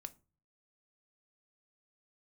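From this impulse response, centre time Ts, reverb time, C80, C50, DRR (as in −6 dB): 3 ms, 0.35 s, 28.0 dB, 21.0 dB, 9.0 dB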